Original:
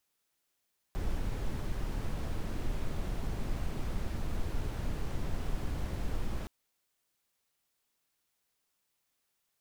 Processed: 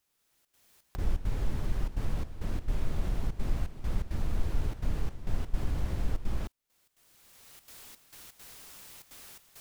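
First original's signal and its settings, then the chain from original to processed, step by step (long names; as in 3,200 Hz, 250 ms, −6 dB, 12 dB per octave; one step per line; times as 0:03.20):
noise brown, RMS −32.5 dBFS 5.52 s
camcorder AGC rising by 23 dB per second
low-shelf EQ 110 Hz +6.5 dB
gate pattern "xxxxx.xxx..xx.xx" 168 BPM −12 dB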